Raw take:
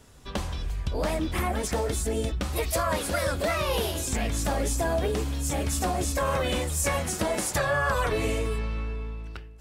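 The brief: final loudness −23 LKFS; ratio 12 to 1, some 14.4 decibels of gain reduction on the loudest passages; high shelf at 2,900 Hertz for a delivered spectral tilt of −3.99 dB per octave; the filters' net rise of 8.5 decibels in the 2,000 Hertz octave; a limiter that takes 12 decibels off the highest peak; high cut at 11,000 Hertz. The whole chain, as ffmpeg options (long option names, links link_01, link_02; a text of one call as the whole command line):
ffmpeg -i in.wav -af "lowpass=11000,equalizer=frequency=2000:width_type=o:gain=7.5,highshelf=frequency=2900:gain=8.5,acompressor=threshold=-32dB:ratio=12,volume=13.5dB,alimiter=limit=-14dB:level=0:latency=1" out.wav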